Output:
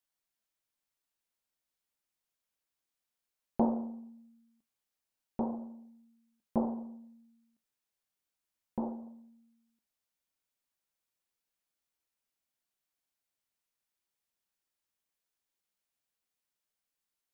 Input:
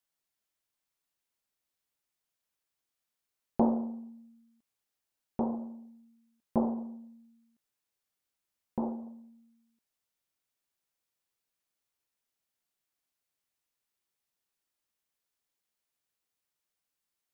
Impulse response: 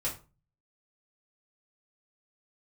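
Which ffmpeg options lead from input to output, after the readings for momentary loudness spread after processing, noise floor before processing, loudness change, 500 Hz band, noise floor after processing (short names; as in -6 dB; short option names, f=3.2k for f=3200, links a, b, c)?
20 LU, under -85 dBFS, -2.5 dB, -2.5 dB, under -85 dBFS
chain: -filter_complex "[0:a]asplit=2[a][b];[1:a]atrim=start_sample=2205,asetrate=79380,aresample=44100[c];[b][c]afir=irnorm=-1:irlink=0,volume=-15.5dB[d];[a][d]amix=inputs=2:normalize=0,volume=-3dB"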